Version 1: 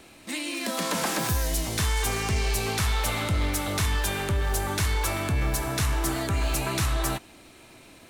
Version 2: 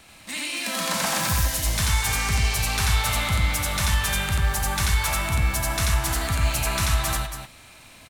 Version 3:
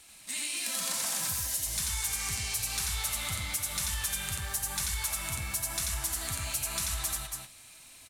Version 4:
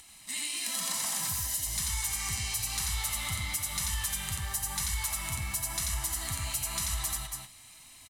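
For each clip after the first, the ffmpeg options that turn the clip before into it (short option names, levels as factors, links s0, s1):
-filter_complex "[0:a]equalizer=f=360:w=1.2:g=-13.5,asplit=2[s0][s1];[s1]aecho=0:1:87.46|279.9:0.891|0.398[s2];[s0][s2]amix=inputs=2:normalize=0,volume=1.26"
-af "equalizer=f=10000:w=0.36:g=15,acompressor=threshold=0.158:ratio=6,flanger=delay=2.1:depth=8.5:regen=-43:speed=1:shape=triangular,volume=0.376"
-af "aecho=1:1:1:0.45,acompressor=mode=upward:threshold=0.00316:ratio=2.5,volume=0.891"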